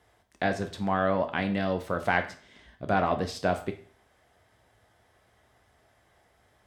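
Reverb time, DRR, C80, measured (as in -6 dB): 0.45 s, 6.5 dB, 16.5 dB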